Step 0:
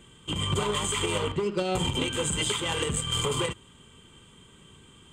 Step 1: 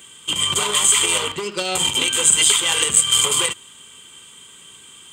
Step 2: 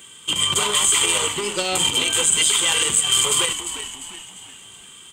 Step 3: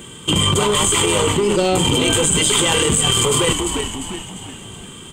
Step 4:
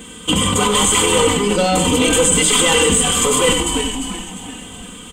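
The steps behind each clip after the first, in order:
spectral tilt +4 dB per octave; level +5.5 dB
on a send: echo with shifted repeats 349 ms, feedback 44%, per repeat −80 Hz, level −12 dB; on the sum: brickwall limiter −6.5 dBFS, peak gain reduction 5.5 dB
tilt shelving filter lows +9 dB, about 780 Hz; in parallel at +1 dB: compressor whose output falls as the input rises −27 dBFS, ratio −0.5; on the sum: level +3.5 dB
comb filter 4 ms, depth 100%; single-tap delay 91 ms −8.5 dB; level −1 dB

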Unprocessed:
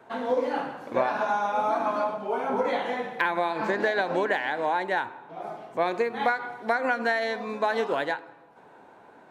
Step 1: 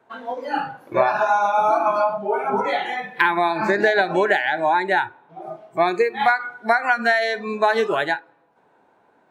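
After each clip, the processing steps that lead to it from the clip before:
noise reduction from a noise print of the clip's start 15 dB
level +8 dB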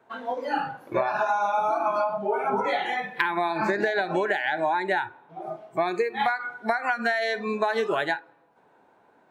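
downward compressor, threshold −20 dBFS, peak gain reduction 8 dB
level −1 dB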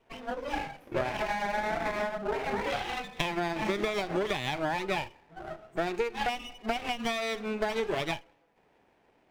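lower of the sound and its delayed copy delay 0.33 ms
level −4.5 dB

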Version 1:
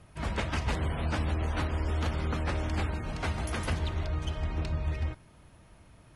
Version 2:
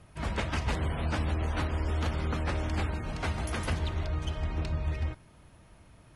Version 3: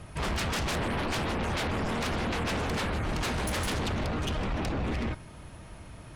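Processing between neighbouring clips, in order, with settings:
no processing that can be heard
sine wavefolder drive 14 dB, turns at −19 dBFS; level −8 dB

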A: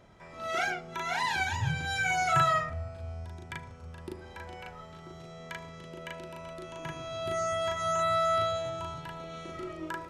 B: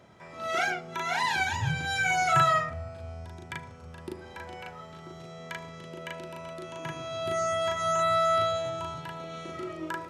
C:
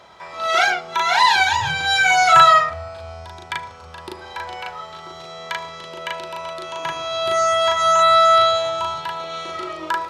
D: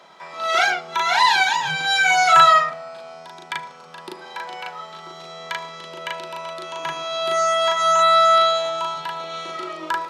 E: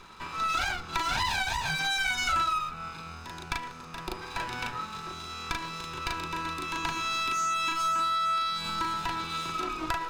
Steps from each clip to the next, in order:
high-pass filter 95 Hz; level +2.5 dB
graphic EQ with 10 bands 125 Hz −10 dB, 250 Hz −8 dB, 1,000 Hz +8 dB, 4,000 Hz +9 dB; level +7 dB
Chebyshev high-pass filter 150 Hz, order 5; level −1 dB
lower of the sound and its delayed copy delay 0.8 ms; low-shelf EQ 230 Hz +4.5 dB; downward compressor 5 to 1, threshold −27 dBFS, peak gain reduction 16 dB

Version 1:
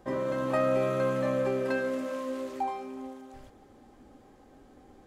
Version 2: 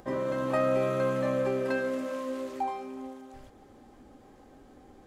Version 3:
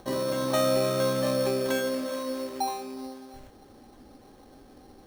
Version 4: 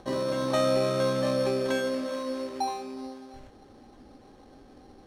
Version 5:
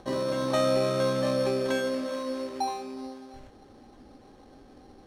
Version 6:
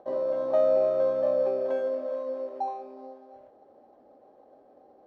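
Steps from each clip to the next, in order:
upward compression, threshold −49 dBFS
decimation without filtering 9×; level +2 dB
high-frequency loss of the air 50 metres
no processing that can be heard
resonant band-pass 610 Hz, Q 3.6; level +5.5 dB

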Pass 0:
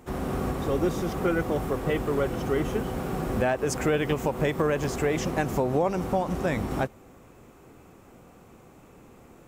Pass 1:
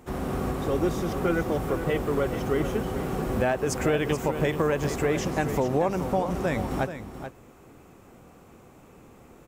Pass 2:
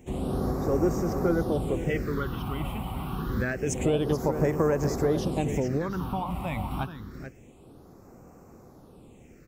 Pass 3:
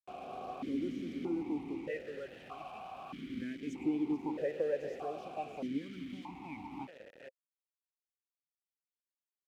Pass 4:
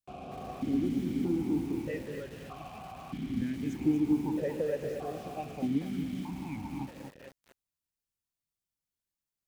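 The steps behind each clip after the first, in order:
single-tap delay 431 ms −10.5 dB
all-pass phaser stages 6, 0.27 Hz, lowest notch 430–3,300 Hz
bit reduction 6 bits; formant filter that steps through the vowels 1.6 Hz; level −1 dB
bass and treble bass +15 dB, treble +4 dB; feedback echo at a low word length 235 ms, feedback 35%, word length 8 bits, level −7 dB

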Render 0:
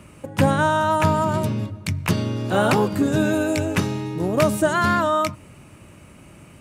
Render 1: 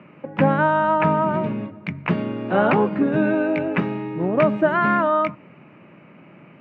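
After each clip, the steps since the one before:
elliptic band-pass filter 160–2,400 Hz, stop band 70 dB
level +1.5 dB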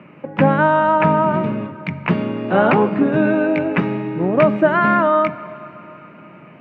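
dense smooth reverb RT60 3.7 s, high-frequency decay 0.9×, DRR 15 dB
level +3.5 dB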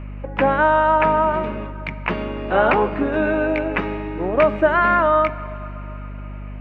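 Bessel high-pass filter 410 Hz, order 2
mains hum 50 Hz, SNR 12 dB

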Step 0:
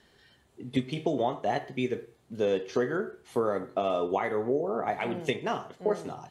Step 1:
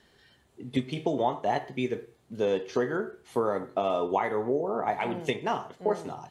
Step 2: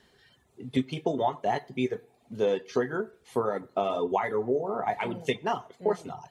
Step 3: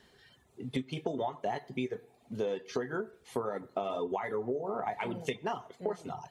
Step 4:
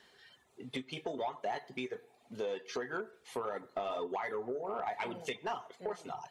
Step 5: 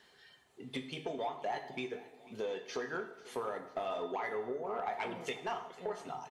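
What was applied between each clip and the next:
dynamic equaliser 910 Hz, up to +7 dB, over −49 dBFS, Q 4.6
coupled-rooms reverb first 0.4 s, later 2.4 s, from −21 dB, DRR 9 dB; reverb reduction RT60 0.59 s
downward compressor 4 to 1, threshold −31 dBFS, peak gain reduction 9.5 dB
mid-hump overdrive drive 15 dB, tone 7,500 Hz, clips at −16 dBFS; level −8 dB
repeating echo 494 ms, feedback 53%, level −20 dB; dense smooth reverb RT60 0.9 s, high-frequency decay 0.9×, DRR 7 dB; level −1 dB

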